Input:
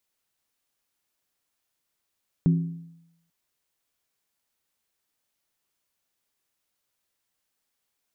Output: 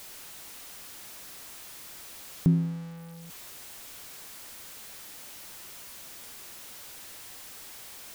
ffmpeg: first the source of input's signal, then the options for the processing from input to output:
-f lavfi -i "aevalsrc='0.188*pow(10,-3*t/0.84)*sin(2*PI*167*t)+0.0596*pow(10,-3*t/0.665)*sin(2*PI*266.2*t)+0.0188*pow(10,-3*t/0.575)*sin(2*PI*356.7*t)+0.00596*pow(10,-3*t/0.554)*sin(2*PI*383.4*t)+0.00188*pow(10,-3*t/0.516)*sin(2*PI*443.1*t)':duration=0.84:sample_rate=44100"
-af "aeval=exprs='val(0)+0.5*0.0112*sgn(val(0))':channel_layout=same"

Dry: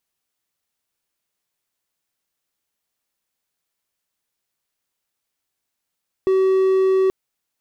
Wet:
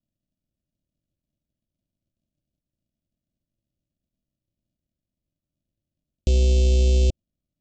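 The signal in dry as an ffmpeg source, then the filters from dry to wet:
-f lavfi -i "aevalsrc='0.266*(1-4*abs(mod(380*t+0.25,1)-0.5))':duration=0.83:sample_rate=44100"
-af "aresample=16000,acrusher=samples=36:mix=1:aa=0.000001,aresample=44100,asuperstop=centerf=1300:order=12:qfactor=0.67"

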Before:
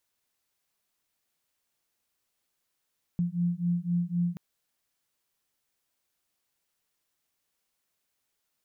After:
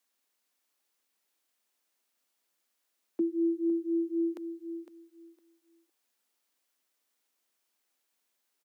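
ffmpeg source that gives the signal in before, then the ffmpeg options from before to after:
-f lavfi -i "aevalsrc='0.0376*(sin(2*PI*172*t)+sin(2*PI*175.9*t))':duration=1.18:sample_rate=44100"
-af "highpass=46,afreqshift=160,aecho=1:1:508|1016|1524:0.299|0.0567|0.0108"

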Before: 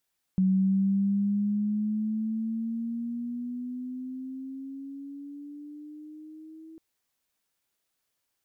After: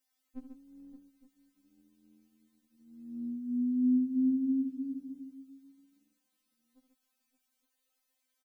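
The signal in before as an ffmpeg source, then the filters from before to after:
-f lavfi -i "aevalsrc='pow(10,(-19.5-24.5*t/6.4)/20)*sin(2*PI*187*6.4/(9.5*log(2)/12)*(exp(9.5*log(2)/12*t/6.4)-1))':duration=6.4:sample_rate=44100"
-af "aecho=1:1:72|139|569|865:0.316|0.422|0.188|0.112,afftfilt=real='re*3.46*eq(mod(b,12),0)':imag='im*3.46*eq(mod(b,12),0)':win_size=2048:overlap=0.75"

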